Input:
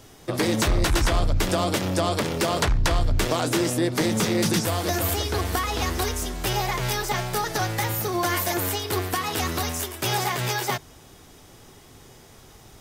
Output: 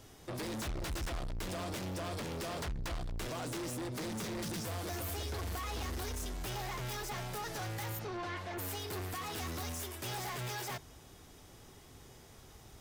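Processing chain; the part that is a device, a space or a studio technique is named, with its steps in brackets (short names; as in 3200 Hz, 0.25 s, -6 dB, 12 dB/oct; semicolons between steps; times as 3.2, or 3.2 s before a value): open-reel tape (soft clip -30 dBFS, distortion -6 dB; bell 61 Hz +4.5 dB 1.14 oct; white noise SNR 48 dB); 7.98–8.57 LPF 4800 Hz -> 2900 Hz 12 dB/oct; gain -7.5 dB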